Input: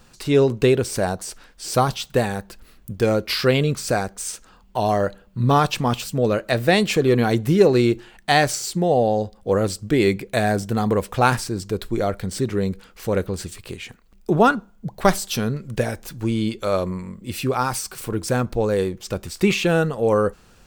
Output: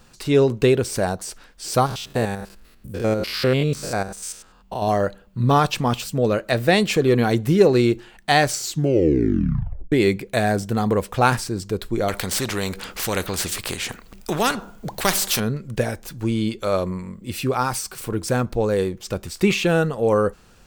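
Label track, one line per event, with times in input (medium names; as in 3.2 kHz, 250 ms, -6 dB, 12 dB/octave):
1.860000	4.880000	spectrogram pixelated in time every 100 ms
8.600000	8.600000	tape stop 1.32 s
12.080000	15.400000	spectrum-flattening compressor 2:1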